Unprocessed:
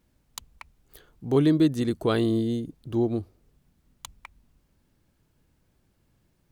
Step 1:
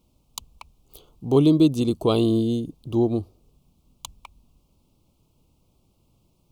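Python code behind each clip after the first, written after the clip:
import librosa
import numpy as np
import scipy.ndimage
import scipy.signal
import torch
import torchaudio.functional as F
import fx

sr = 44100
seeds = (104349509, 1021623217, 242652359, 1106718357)

y = scipy.signal.sosfilt(scipy.signal.cheby1(2, 1.0, [1100.0, 2700.0], 'bandstop', fs=sr, output='sos'), x)
y = y * 10.0 ** (4.5 / 20.0)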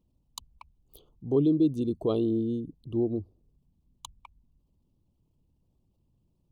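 y = fx.envelope_sharpen(x, sr, power=1.5)
y = y * 10.0 ** (-6.5 / 20.0)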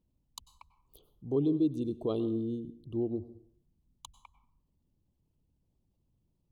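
y = fx.rev_plate(x, sr, seeds[0], rt60_s=0.62, hf_ratio=0.6, predelay_ms=85, drr_db=14.5)
y = y * 10.0 ** (-5.0 / 20.0)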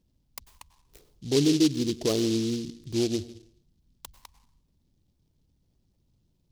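y = fx.noise_mod_delay(x, sr, seeds[1], noise_hz=4300.0, depth_ms=0.13)
y = y * 10.0 ** (6.0 / 20.0)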